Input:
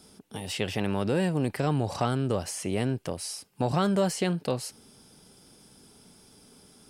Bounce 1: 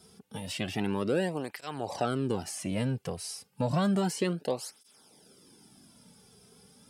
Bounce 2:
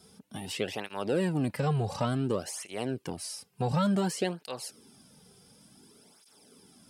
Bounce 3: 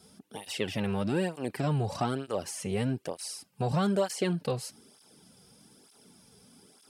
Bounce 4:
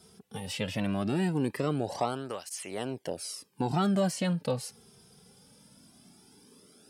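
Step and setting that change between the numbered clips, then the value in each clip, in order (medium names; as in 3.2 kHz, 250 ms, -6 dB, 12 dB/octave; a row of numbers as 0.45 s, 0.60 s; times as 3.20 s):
cancelling through-zero flanger, nulls at: 0.31 Hz, 0.56 Hz, 1.1 Hz, 0.2 Hz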